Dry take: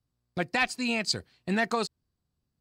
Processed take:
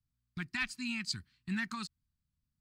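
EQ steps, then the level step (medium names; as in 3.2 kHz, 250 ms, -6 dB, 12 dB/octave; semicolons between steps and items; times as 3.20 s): Chebyshev band-stop 230–1300 Hz, order 2; bass shelf 78 Hz +10 dB; -7.5 dB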